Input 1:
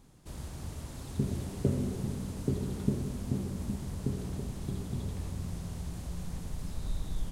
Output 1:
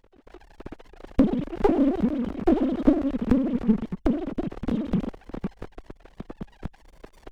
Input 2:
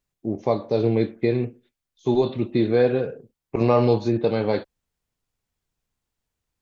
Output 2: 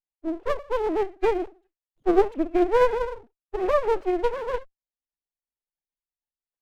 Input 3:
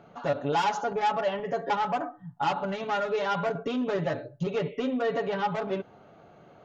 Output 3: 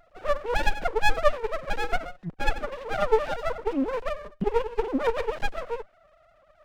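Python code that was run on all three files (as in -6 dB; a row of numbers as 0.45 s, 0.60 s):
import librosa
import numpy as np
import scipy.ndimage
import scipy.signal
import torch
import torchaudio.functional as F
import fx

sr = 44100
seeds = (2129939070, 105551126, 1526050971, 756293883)

y = fx.sine_speech(x, sr)
y = fx.running_max(y, sr, window=33)
y = y * 10.0 ** (-26 / 20.0) / np.sqrt(np.mean(np.square(y)))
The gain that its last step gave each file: +9.5 dB, +0.5 dB, +7.0 dB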